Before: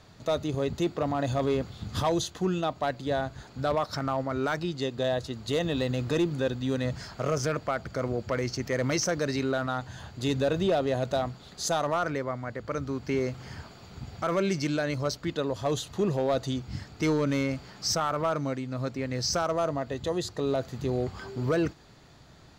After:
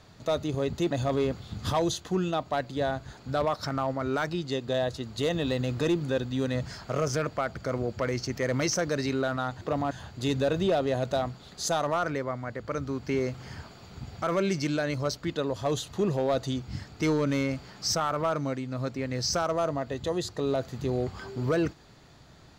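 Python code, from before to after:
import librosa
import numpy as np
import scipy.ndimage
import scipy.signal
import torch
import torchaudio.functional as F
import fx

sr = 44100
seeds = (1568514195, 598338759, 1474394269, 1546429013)

y = fx.edit(x, sr, fx.move(start_s=0.91, length_s=0.3, to_s=9.91), tone=tone)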